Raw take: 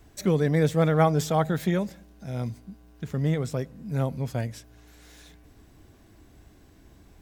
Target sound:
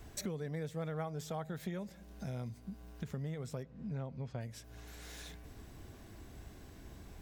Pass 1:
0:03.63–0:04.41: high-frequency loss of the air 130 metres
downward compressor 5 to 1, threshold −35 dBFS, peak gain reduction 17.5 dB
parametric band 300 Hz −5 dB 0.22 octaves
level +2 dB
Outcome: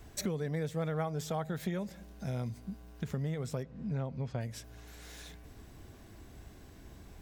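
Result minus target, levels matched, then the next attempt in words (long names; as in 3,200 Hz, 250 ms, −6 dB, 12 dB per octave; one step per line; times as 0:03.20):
downward compressor: peak gain reduction −5 dB
0:03.63–0:04.41: high-frequency loss of the air 130 metres
downward compressor 5 to 1, threshold −41.5 dBFS, peak gain reduction 23 dB
parametric band 300 Hz −5 dB 0.22 octaves
level +2 dB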